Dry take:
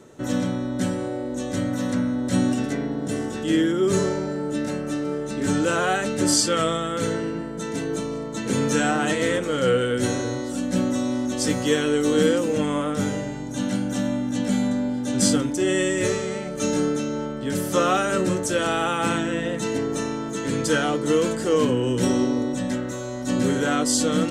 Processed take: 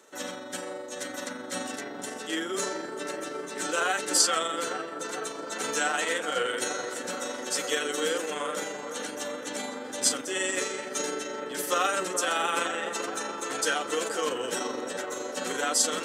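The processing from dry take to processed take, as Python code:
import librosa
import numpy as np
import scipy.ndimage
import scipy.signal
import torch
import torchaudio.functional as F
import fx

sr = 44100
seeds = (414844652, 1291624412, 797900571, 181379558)

p1 = x + fx.echo_wet_lowpass(x, sr, ms=646, feedback_pct=77, hz=1500.0, wet_db=-8.5, dry=0)
p2 = fx.stretch_grains(p1, sr, factor=0.66, grain_ms=85.0)
p3 = scipy.signal.sosfilt(scipy.signal.bessel(2, 810.0, 'highpass', norm='mag', fs=sr, output='sos'), p2)
y = fx.high_shelf(p3, sr, hz=11000.0, db=5.5)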